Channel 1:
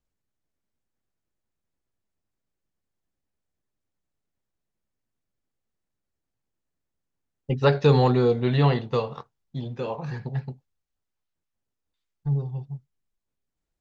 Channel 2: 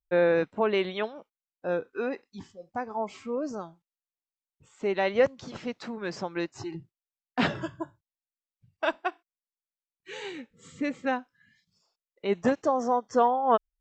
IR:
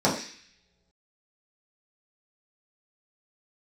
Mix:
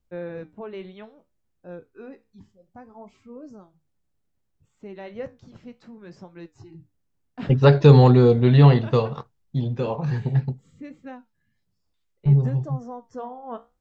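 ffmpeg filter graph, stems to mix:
-filter_complex "[0:a]volume=1.19[s0];[1:a]lowshelf=f=190:g=9.5,flanger=delay=9.9:depth=7.7:regen=-67:speed=0.63:shape=triangular,volume=0.282[s1];[s0][s1]amix=inputs=2:normalize=0,lowshelf=f=310:g=8"

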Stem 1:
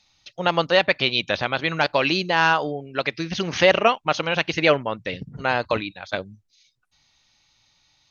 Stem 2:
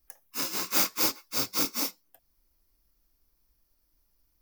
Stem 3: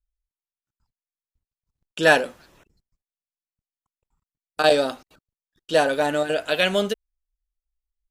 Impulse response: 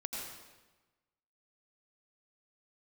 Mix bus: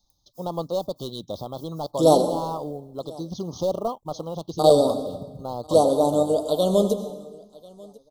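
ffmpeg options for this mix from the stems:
-filter_complex "[0:a]acontrast=61,acrusher=bits=8:mode=log:mix=0:aa=0.000001,volume=0.335,asplit=2[s0][s1];[1:a]volume=0.106[s2];[2:a]volume=1.26,asplit=3[s3][s4][s5];[s4]volume=0.562[s6];[s5]volume=0.0841[s7];[s1]apad=whole_len=194886[s8];[s2][s8]sidechaincompress=threshold=0.0501:ratio=8:attack=12:release=400[s9];[3:a]atrim=start_sample=2205[s10];[s6][s10]afir=irnorm=-1:irlink=0[s11];[s7]aecho=0:1:1042|2084|3126|4168:1|0.25|0.0625|0.0156[s12];[s0][s9][s3][s11][s12]amix=inputs=5:normalize=0,asuperstop=centerf=2000:order=12:qfactor=0.96,equalizer=f=2300:t=o:w=2.1:g=-14.5"

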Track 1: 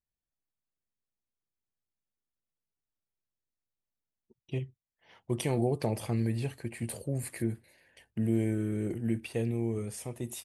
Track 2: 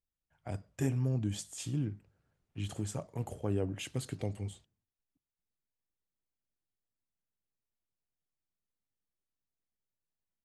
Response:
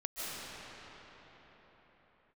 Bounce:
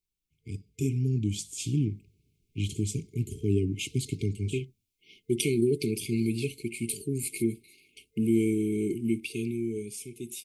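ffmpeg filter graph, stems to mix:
-filter_complex "[0:a]equalizer=f=87:t=o:w=1.8:g=-12.5,volume=1.33[s0];[1:a]volume=1.26[s1];[s0][s1]amix=inputs=2:normalize=0,afftfilt=real='re*(1-between(b*sr/4096,450,2100))':imag='im*(1-between(b*sr/4096,450,2100))':win_size=4096:overlap=0.75,dynaudnorm=f=240:g=11:m=1.88"

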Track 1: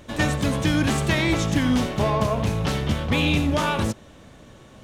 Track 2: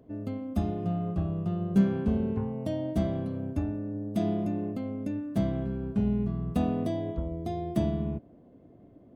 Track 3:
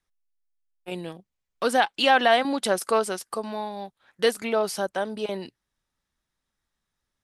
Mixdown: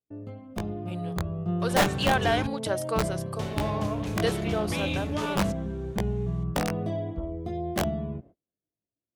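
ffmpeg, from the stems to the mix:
-filter_complex "[0:a]adelay=1600,volume=0.211,asplit=3[s0][s1][s2];[s0]atrim=end=2.47,asetpts=PTS-STARTPTS,afade=t=out:st=2.466:d=0.004:c=hsin[s3];[s1]atrim=start=2.47:end=3.39,asetpts=PTS-STARTPTS,volume=0[s4];[s2]atrim=start=3.39,asetpts=PTS-STARTPTS,afade=t=in:d=0.004:c=hsin[s5];[s3][s4][s5]concat=n=3:v=0:a=1[s6];[1:a]lowpass=f=3000:p=1,aeval=exprs='(mod(7.5*val(0)+1,2)-1)/7.5':c=same,flanger=delay=17:depth=5.8:speed=0.32,volume=0.944[s7];[2:a]volume=0.282[s8];[s6][s7][s8]amix=inputs=3:normalize=0,dynaudnorm=f=240:g=9:m=1.68,equalizer=f=250:w=7.3:g=-10.5,agate=range=0.0141:threshold=0.00398:ratio=16:detection=peak"

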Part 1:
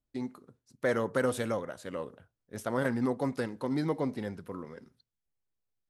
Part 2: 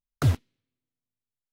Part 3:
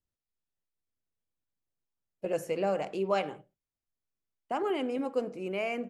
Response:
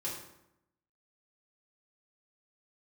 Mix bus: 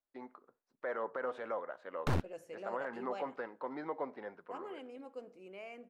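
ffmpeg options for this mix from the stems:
-filter_complex "[0:a]highpass=680,alimiter=level_in=1.58:limit=0.0631:level=0:latency=1:release=54,volume=0.631,lowpass=1400,volume=1.19[s0];[1:a]highshelf=f=2100:g=-9.5,aeval=exprs='0.2*(cos(1*acos(clip(val(0)/0.2,-1,1)))-cos(1*PI/2))+0.1*(cos(5*acos(clip(val(0)/0.2,-1,1)))-cos(5*PI/2))+0.0891*(cos(8*acos(clip(val(0)/0.2,-1,1)))-cos(8*PI/2))':c=same,adelay=1850,volume=0.211[s1];[2:a]equalizer=f=120:w=0.87:g=-9,volume=0.178[s2];[s0][s1][s2]amix=inputs=3:normalize=0,highshelf=f=10000:g=-7.5"

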